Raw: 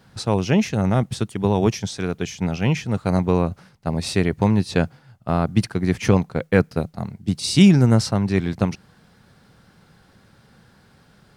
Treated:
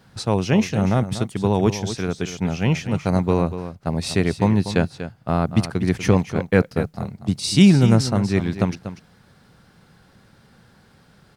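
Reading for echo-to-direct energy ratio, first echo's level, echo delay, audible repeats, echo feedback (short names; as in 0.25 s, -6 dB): -11.5 dB, -11.5 dB, 0.241 s, 1, no steady repeat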